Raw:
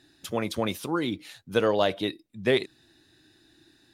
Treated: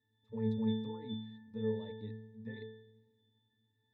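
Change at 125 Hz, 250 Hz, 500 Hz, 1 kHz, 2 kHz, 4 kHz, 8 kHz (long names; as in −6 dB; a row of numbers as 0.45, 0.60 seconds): −4.5 dB, −7.0 dB, −15.0 dB, −22.0 dB, −23.0 dB, −18.5 dB, can't be measured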